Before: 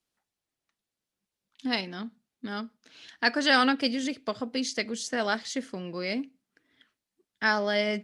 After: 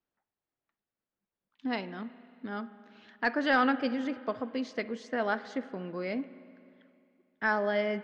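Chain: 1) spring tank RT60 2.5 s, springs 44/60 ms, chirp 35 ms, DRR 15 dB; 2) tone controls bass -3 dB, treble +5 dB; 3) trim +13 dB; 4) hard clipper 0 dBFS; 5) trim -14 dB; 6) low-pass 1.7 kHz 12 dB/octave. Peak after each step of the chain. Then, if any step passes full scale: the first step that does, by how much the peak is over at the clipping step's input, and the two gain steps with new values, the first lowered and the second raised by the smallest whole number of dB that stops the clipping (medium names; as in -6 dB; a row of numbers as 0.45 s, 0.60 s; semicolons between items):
-9.5 dBFS, -8.5 dBFS, +4.5 dBFS, 0.0 dBFS, -14.0 dBFS, -14.5 dBFS; step 3, 4.5 dB; step 3 +8 dB, step 5 -9 dB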